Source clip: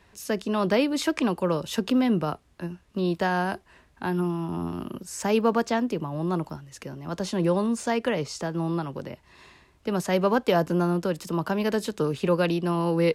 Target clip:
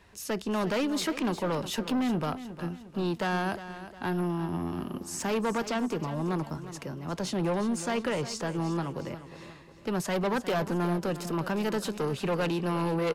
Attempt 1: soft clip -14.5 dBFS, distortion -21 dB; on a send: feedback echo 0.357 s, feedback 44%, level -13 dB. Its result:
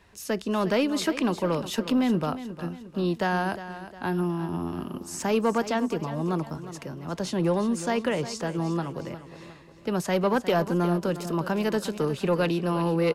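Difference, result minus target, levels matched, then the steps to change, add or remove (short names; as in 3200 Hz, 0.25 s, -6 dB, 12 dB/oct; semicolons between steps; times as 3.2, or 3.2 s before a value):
soft clip: distortion -11 dB
change: soft clip -24.5 dBFS, distortion -9 dB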